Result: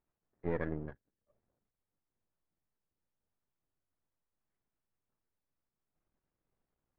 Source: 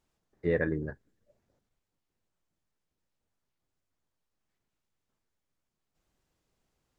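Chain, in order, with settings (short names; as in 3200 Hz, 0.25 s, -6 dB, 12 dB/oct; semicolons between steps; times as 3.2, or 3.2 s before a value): half-wave gain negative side -12 dB; LPF 1800 Hz 12 dB/oct; gain -4.5 dB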